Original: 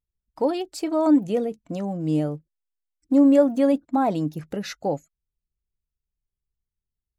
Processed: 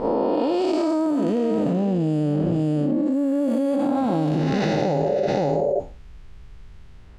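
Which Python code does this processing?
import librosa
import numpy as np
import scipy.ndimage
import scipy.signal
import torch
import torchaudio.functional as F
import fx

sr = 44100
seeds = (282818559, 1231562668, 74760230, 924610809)

y = fx.spec_blur(x, sr, span_ms=347.0)
y = fx.peak_eq(y, sr, hz=1700.0, db=6.5, octaves=0.35, at=(0.77, 3.4))
y = fx.spec_repair(y, sr, seeds[0], start_s=5.0, length_s=0.24, low_hz=350.0, high_hz=710.0, source='before')
y = fx.env_lowpass(y, sr, base_hz=2300.0, full_db=-18.0)
y = y + 10.0 ** (-14.0 / 20.0) * np.pad(y, (int(523 * sr / 1000.0), 0))[:len(y)]
y = fx.rider(y, sr, range_db=4, speed_s=0.5)
y = fx.high_shelf(y, sr, hz=4800.0, db=7.5)
y = fx.env_flatten(y, sr, amount_pct=100)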